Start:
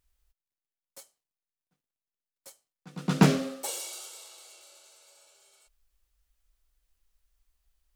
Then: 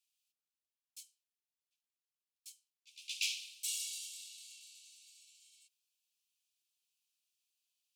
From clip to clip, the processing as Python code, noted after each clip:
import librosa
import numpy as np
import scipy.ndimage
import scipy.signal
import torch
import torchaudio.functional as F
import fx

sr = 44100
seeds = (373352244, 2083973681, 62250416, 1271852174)

y = scipy.signal.sosfilt(scipy.signal.butter(16, 2400.0, 'highpass', fs=sr, output='sos'), x)
y = fx.high_shelf(y, sr, hz=11000.0, db=-8.5)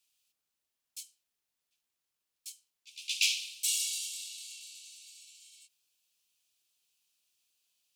y = fx.end_taper(x, sr, db_per_s=410.0)
y = F.gain(torch.from_numpy(y), 8.0).numpy()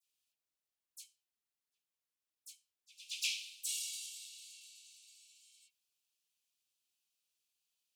y = fx.dispersion(x, sr, late='lows', ms=57.0, hz=2800.0)
y = F.gain(torch.from_numpy(y), -8.5).numpy()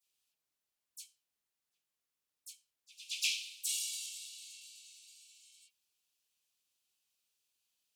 y = fx.wow_flutter(x, sr, seeds[0], rate_hz=2.1, depth_cents=23.0)
y = F.gain(torch.from_numpy(y), 3.0).numpy()